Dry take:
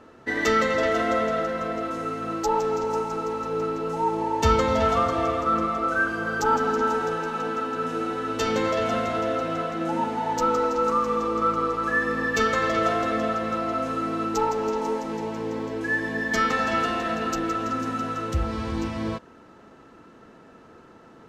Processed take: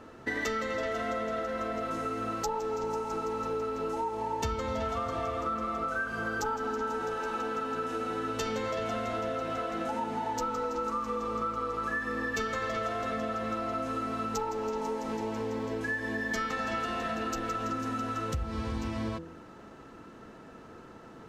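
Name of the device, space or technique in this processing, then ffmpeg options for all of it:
ASMR close-microphone chain: -af "lowshelf=frequency=120:gain=5,bandreject=frequency=82.64:width_type=h:width=4,bandreject=frequency=165.28:width_type=h:width=4,bandreject=frequency=247.92:width_type=h:width=4,bandreject=frequency=330.56:width_type=h:width=4,bandreject=frequency=413.2:width_type=h:width=4,bandreject=frequency=495.84:width_type=h:width=4,bandreject=frequency=578.48:width_type=h:width=4,acompressor=threshold=-30dB:ratio=6,highshelf=frequency=8100:gain=4"

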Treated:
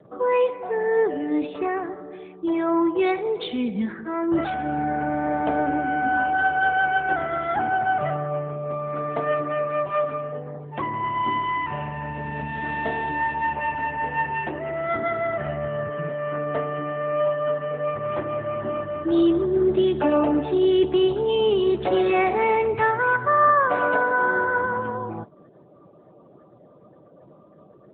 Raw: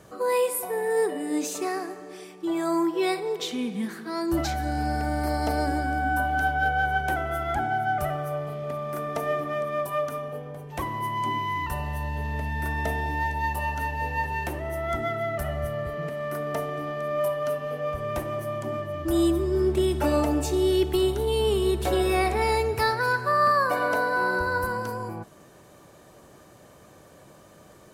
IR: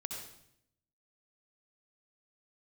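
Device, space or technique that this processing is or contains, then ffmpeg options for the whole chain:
mobile call with aggressive noise cancelling: -af "highpass=110,afftdn=noise_reduction=35:noise_floor=-49,volume=4dB" -ar 8000 -c:a libopencore_amrnb -b:a 10200

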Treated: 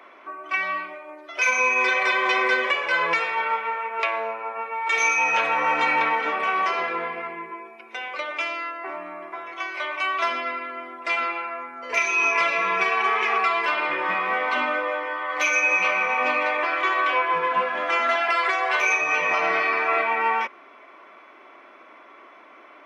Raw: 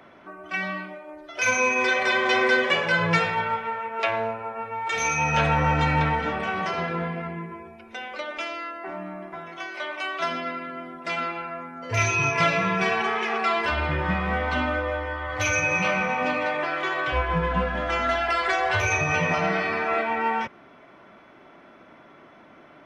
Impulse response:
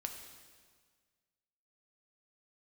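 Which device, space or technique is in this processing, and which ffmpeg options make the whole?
laptop speaker: -af "highpass=frequency=310:width=0.5412,highpass=frequency=310:width=1.3066,equalizer=frequency=1100:width_type=o:width=0.24:gain=10,equalizer=frequency=2300:width_type=o:width=0.51:gain=7.5,alimiter=limit=-11dB:level=0:latency=1:release=388"

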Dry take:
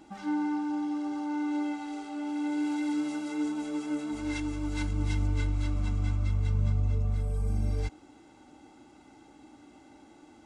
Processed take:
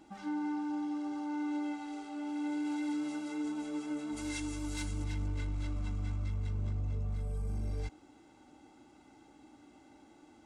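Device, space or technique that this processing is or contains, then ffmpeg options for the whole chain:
clipper into limiter: -filter_complex "[0:a]asplit=3[link_01][link_02][link_03];[link_01]afade=type=out:start_time=4.16:duration=0.02[link_04];[link_02]aemphasis=mode=production:type=75kf,afade=type=in:start_time=4.16:duration=0.02,afade=type=out:start_time=5.03:duration=0.02[link_05];[link_03]afade=type=in:start_time=5.03:duration=0.02[link_06];[link_04][link_05][link_06]amix=inputs=3:normalize=0,asoftclip=type=hard:threshold=-22.5dB,alimiter=level_in=1.5dB:limit=-24dB:level=0:latency=1:release=14,volume=-1.5dB,volume=-4.5dB"

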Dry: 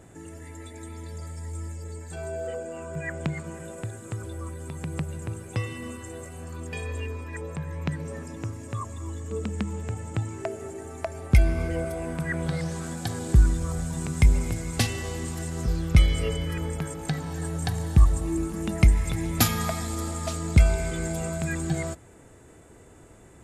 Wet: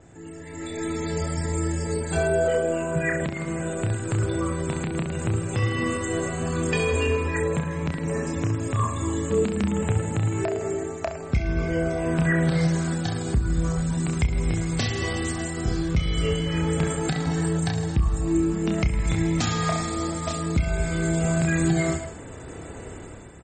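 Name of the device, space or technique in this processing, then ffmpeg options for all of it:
low-bitrate web radio: -filter_complex "[0:a]asplit=3[link_01][link_02][link_03];[link_01]afade=type=out:start_time=9.88:duration=0.02[link_04];[link_02]highpass=56,afade=type=in:start_time=9.88:duration=0.02,afade=type=out:start_time=11.09:duration=0.02[link_05];[link_03]afade=type=in:start_time=11.09:duration=0.02[link_06];[link_04][link_05][link_06]amix=inputs=3:normalize=0,adynamicequalizer=threshold=0.00112:dfrequency=9200:dqfactor=5.4:tfrequency=9200:tqfactor=5.4:attack=5:release=100:ratio=0.375:range=2.5:mode=cutabove:tftype=bell,asettb=1/sr,asplit=3[link_07][link_08][link_09];[link_07]atrim=end=14.994[link_10];[link_08]atrim=start=14.99:end=15.89,asetpts=PTS-STARTPTS,afade=type=in:duration=0.004:curve=qsin,afade=type=out:start_time=0.896:duration=0.004:curve=qsin,asplit=2[link_11][link_12];[link_12]adelay=27,volume=-3dB[link_13];[link_11][link_13]amix=inputs=2:normalize=0,atrim=end_sample=39690[link_14];[link_09]atrim=start=15.886[link_15];[link_10][link_14]acrossfade=duration=0.004:curve1=hsin:curve2=qsin[link_16];[link_16][link_15]acrossfade=duration=0.004:curve1=qsin:curve2=hsin,aecho=1:1:30|66|109.2|161|223.2:0.631|0.398|0.251|0.158|0.1,dynaudnorm=framelen=110:gausssize=13:maxgain=14dB,alimiter=limit=-11dB:level=0:latency=1:release=257,volume=-1.5dB" -ar 48000 -c:a libmp3lame -b:a 32k

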